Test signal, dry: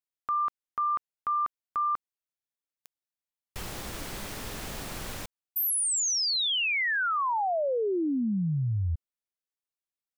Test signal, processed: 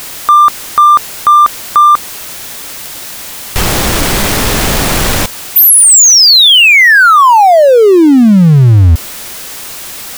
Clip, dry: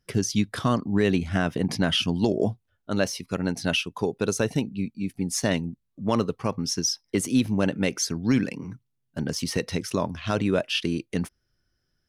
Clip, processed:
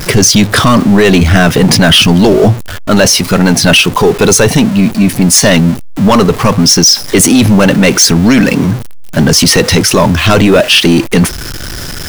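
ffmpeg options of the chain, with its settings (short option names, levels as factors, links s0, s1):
-af "aeval=exprs='val(0)+0.5*0.0119*sgn(val(0))':c=same,apsyclip=18.8,volume=0.841"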